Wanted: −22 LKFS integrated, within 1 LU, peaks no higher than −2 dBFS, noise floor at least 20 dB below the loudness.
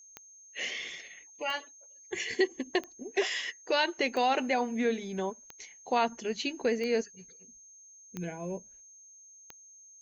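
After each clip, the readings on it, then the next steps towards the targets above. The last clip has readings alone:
number of clicks 8; interfering tone 6,400 Hz; level of the tone −52 dBFS; integrated loudness −32.0 LKFS; sample peak −15.0 dBFS; target loudness −22.0 LKFS
→ click removal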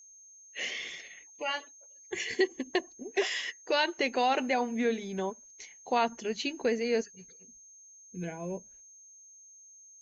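number of clicks 0; interfering tone 6,400 Hz; level of the tone −52 dBFS
→ notch filter 6,400 Hz, Q 30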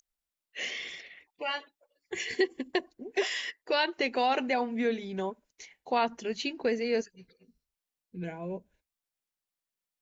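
interfering tone none found; integrated loudness −32.0 LKFS; sample peak −15.0 dBFS; target loudness −22.0 LKFS
→ level +10 dB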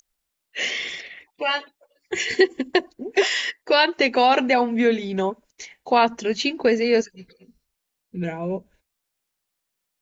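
integrated loudness −22.0 LKFS; sample peak −5.0 dBFS; background noise floor −80 dBFS

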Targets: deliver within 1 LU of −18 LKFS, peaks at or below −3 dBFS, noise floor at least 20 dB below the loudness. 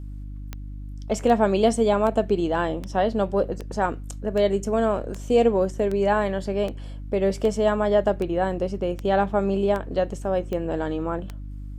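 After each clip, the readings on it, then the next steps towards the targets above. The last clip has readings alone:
number of clicks 15; mains hum 50 Hz; hum harmonics up to 300 Hz; level of the hum −32 dBFS; integrated loudness −23.5 LKFS; sample peak −7.0 dBFS; target loudness −18.0 LKFS
→ click removal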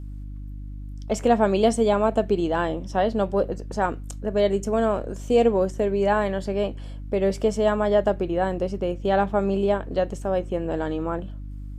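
number of clicks 0; mains hum 50 Hz; hum harmonics up to 300 Hz; level of the hum −32 dBFS
→ hum removal 50 Hz, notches 6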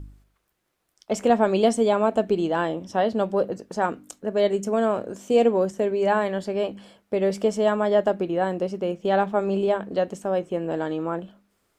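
mains hum none found; integrated loudness −24.0 LKFS; sample peak −6.5 dBFS; target loudness −18.0 LKFS
→ level +6 dB
brickwall limiter −3 dBFS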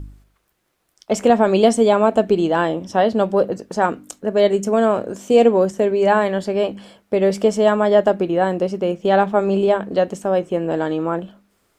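integrated loudness −18.0 LKFS; sample peak −3.0 dBFS; background noise floor −66 dBFS

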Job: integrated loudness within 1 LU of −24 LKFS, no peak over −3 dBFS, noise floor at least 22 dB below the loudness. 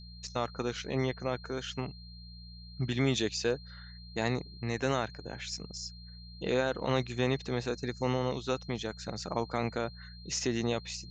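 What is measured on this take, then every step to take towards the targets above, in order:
mains hum 60 Hz; hum harmonics up to 180 Hz; level of the hum −46 dBFS; interfering tone 4,200 Hz; level of the tone −52 dBFS; integrated loudness −34.0 LKFS; sample peak −15.0 dBFS; target loudness −24.0 LKFS
→ hum removal 60 Hz, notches 3
notch filter 4,200 Hz, Q 30
level +10 dB

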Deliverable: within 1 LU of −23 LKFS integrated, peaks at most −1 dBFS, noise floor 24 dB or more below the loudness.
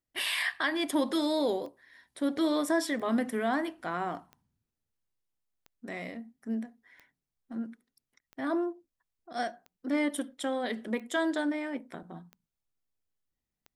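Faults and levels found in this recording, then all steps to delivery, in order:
number of clicks 11; integrated loudness −32.0 LKFS; sample peak −16.0 dBFS; target loudness −23.0 LKFS
→ click removal
level +9 dB

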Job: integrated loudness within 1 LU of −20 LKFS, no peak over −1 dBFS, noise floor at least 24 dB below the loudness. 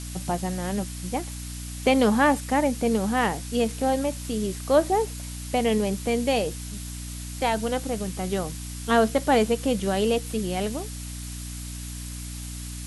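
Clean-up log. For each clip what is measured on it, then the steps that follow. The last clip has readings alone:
mains hum 60 Hz; hum harmonics up to 300 Hz; level of the hum −34 dBFS; background noise floor −36 dBFS; target noise floor −50 dBFS; integrated loudness −26.0 LKFS; sample peak −8.5 dBFS; target loudness −20.0 LKFS
→ mains-hum notches 60/120/180/240/300 Hz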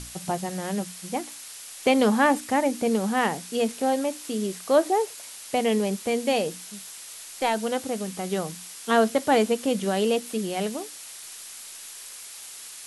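mains hum none found; background noise floor −42 dBFS; target noise floor −50 dBFS
→ broadband denoise 8 dB, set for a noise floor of −42 dBFS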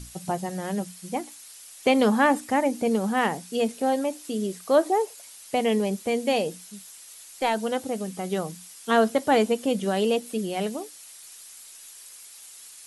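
background noise floor −46 dBFS; target noise floor −50 dBFS
→ broadband denoise 6 dB, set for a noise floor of −46 dBFS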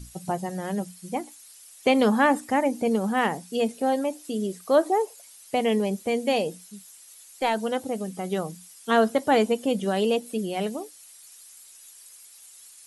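background noise floor −50 dBFS; integrated loudness −25.5 LKFS; sample peak −9.0 dBFS; target loudness −20.0 LKFS
→ level +5.5 dB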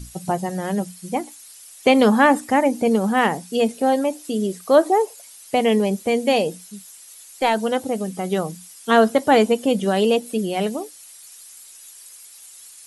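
integrated loudness −20.0 LKFS; sample peak −3.5 dBFS; background noise floor −44 dBFS

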